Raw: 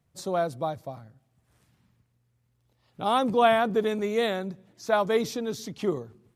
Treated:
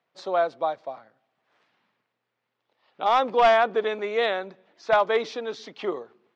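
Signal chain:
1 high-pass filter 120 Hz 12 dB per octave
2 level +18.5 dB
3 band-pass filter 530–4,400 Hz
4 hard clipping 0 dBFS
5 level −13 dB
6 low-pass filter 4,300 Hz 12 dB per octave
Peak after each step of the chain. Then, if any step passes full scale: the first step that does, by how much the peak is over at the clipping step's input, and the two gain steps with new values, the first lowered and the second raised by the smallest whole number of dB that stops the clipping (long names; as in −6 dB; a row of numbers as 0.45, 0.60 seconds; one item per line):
−7.5, +11.0, +9.0, 0.0, −13.0, −12.5 dBFS
step 2, 9.0 dB
step 2 +9.5 dB, step 5 −4 dB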